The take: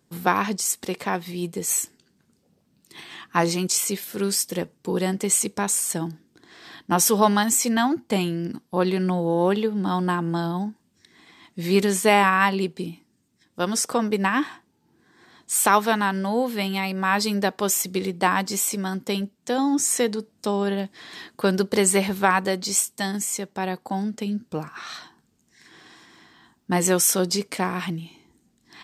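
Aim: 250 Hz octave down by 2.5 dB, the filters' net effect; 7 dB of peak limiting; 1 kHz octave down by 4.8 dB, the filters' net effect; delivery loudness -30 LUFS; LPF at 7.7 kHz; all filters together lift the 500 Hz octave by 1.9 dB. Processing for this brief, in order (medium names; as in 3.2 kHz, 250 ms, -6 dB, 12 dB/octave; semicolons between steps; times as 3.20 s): low-pass 7.7 kHz; peaking EQ 250 Hz -5 dB; peaking EQ 500 Hz +6 dB; peaking EQ 1 kHz -8 dB; trim -4.5 dB; peak limiter -17 dBFS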